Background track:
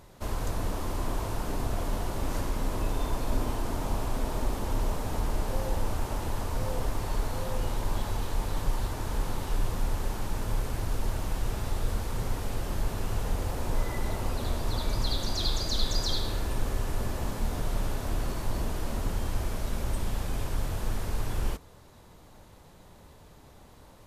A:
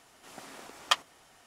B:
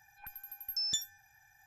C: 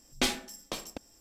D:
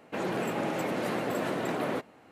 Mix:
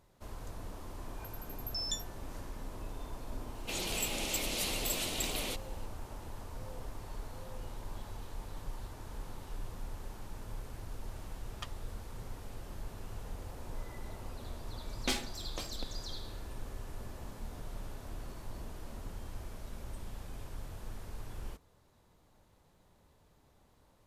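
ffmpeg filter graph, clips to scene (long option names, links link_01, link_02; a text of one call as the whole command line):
ffmpeg -i bed.wav -i cue0.wav -i cue1.wav -i cue2.wav -i cue3.wav -filter_complex "[0:a]volume=-13.5dB[link_01];[4:a]aexciter=amount=7.1:drive=8.5:freq=2500[link_02];[1:a]tremolo=f=1.9:d=0.93[link_03];[2:a]atrim=end=1.66,asetpts=PTS-STARTPTS,volume=-4dB,afade=type=in:duration=0.004:curve=hsin,afade=type=out:start_time=1.656:duration=0.004:curve=hsin,adelay=980[link_04];[link_02]atrim=end=2.31,asetpts=PTS-STARTPTS,volume=-11.5dB,afade=type=in:duration=0.004:curve=hsin,afade=type=out:start_time=2.306:duration=0.004:curve=hsin,adelay=3550[link_05];[link_03]atrim=end=1.46,asetpts=PTS-STARTPTS,volume=-14.5dB,afade=type=in:duration=0.004:curve=hsin,afade=type=out:start_time=1.456:duration=0.004:curve=hsin,adelay=10710[link_06];[3:a]atrim=end=1.2,asetpts=PTS-STARTPTS,volume=-5.5dB,afade=type=in:duration=0.004:curve=hsin,afade=type=out:start_time=1.196:duration=0.004:curve=hsin,adelay=14860[link_07];[link_01][link_04][link_05][link_06][link_07]amix=inputs=5:normalize=0" out.wav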